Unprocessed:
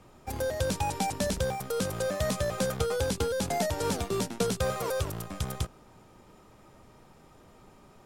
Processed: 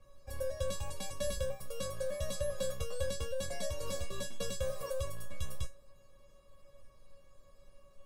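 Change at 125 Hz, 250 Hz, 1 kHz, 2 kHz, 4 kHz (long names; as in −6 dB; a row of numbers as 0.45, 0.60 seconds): −9.5, −16.5, −16.0, −10.5, −7.5 decibels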